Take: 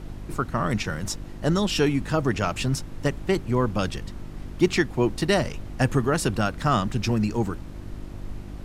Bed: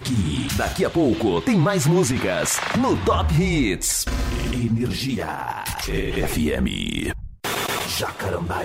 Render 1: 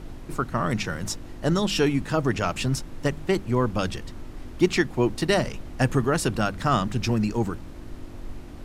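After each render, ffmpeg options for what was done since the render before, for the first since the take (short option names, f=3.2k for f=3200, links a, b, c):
-af "bandreject=f=50:t=h:w=4,bandreject=f=100:t=h:w=4,bandreject=f=150:t=h:w=4,bandreject=f=200:t=h:w=4"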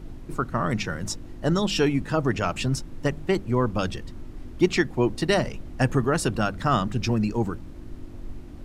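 -af "afftdn=nr=6:nf=-40"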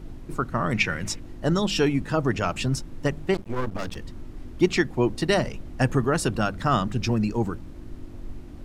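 -filter_complex "[0:a]asettb=1/sr,asplit=3[a][b][c];[a]atrim=end=0.744[d];[b]atrim=start=0.74:end=1.2,asetpts=PTS-STARTPTS,afade=t=in:d=0.004:c=qsin,afade=t=out:st=0.456:d=0.004:c=qsin,equalizer=f=2.3k:w=1.9:g=13[e];[c]atrim=start=1.196[f];[d][e]acrossfade=d=0.004:c1=hsin:c2=qsin[g];[g][f]acrossfade=d=0.004:c1=qsin:c2=hsin,asettb=1/sr,asplit=3[h][i][j];[h]atrim=end=3.344[k];[i]atrim=start=3.34:end=3.96,asetpts=PTS-STARTPTS,afade=t=in:d=0.004:c=qsin,afade=t=out:st=0.616:d=0.004:c=qsin,aeval=exprs='max(val(0),0)':c=same[l];[j]atrim=start=3.956[m];[k][l]acrossfade=d=0.004:c1=hsin:c2=qsin[n];[n][m]acrossfade=d=0.004:c1=qsin:c2=hsin"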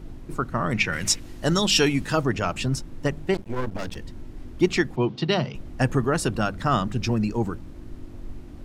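-filter_complex "[0:a]asplit=3[a][b][c];[a]afade=t=out:st=0.92:d=0.02[d];[b]highshelf=f=2k:g=10.5,afade=t=in:st=0.92:d=0.02,afade=t=out:st=2.23:d=0.02[e];[c]afade=t=in:st=2.23:d=0.02[f];[d][e][f]amix=inputs=3:normalize=0,asettb=1/sr,asplit=3[g][h][i];[g]atrim=end=3.224[j];[h]atrim=start=3.22:end=4.38,asetpts=PTS-STARTPTS,afade=t=in:d=0.004:c=qsin,afade=t=out:st=1.156:d=0.004:c=qsin,bandreject=f=1.2k:w=9[k];[i]atrim=start=4.376[l];[j][k]acrossfade=d=0.004:c1=hsin:c2=qsin[m];[m][l]acrossfade=d=0.004:c1=qsin:c2=hsin,asettb=1/sr,asplit=3[n][o][p];[n]atrim=end=4.964[q];[o]atrim=start=4.96:end=5.55,asetpts=PTS-STARTPTS,afade=t=in:d=0.004:c=qsin,afade=t=out:st=0.586:d=0.004:c=qsin,highpass=f=120:w=0.5412,highpass=f=120:w=1.3066,equalizer=f=140:t=q:w=4:g=7,equalizer=f=300:t=q:w=4:g=-4,equalizer=f=560:t=q:w=4:g=-5,equalizer=f=1.8k:t=q:w=4:g=-6,equalizer=f=3.3k:t=q:w=4:g=6,lowpass=f=5k:w=0.5412,lowpass=f=5k:w=1.3066[r];[p]atrim=start=5.546[s];[q][r]acrossfade=d=0.004:c1=hsin:c2=qsin[t];[t][s]acrossfade=d=0.004:c1=qsin:c2=hsin"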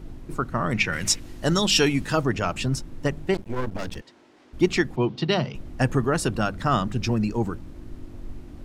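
-filter_complex "[0:a]asplit=3[a][b][c];[a]afade=t=out:st=4:d=0.02[d];[b]highpass=520,lowpass=6.5k,afade=t=in:st=4:d=0.02,afade=t=out:st=4.52:d=0.02[e];[c]afade=t=in:st=4.52:d=0.02[f];[d][e][f]amix=inputs=3:normalize=0"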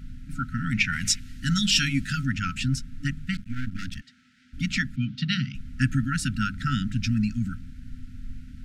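-af "afftfilt=real='re*(1-between(b*sr/4096,280,1300))':imag='im*(1-between(b*sr/4096,280,1300))':win_size=4096:overlap=0.75,highshelf=f=11k:g=-8"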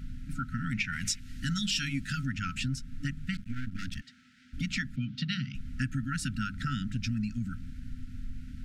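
-af "acompressor=threshold=-32dB:ratio=2.5"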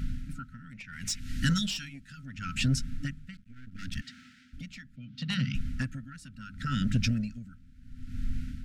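-af "aeval=exprs='0.15*sin(PI/2*1.58*val(0)/0.15)':c=same,aeval=exprs='val(0)*pow(10,-22*(0.5-0.5*cos(2*PI*0.72*n/s))/20)':c=same"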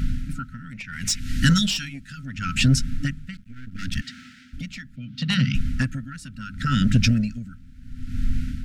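-af "volume=9dB"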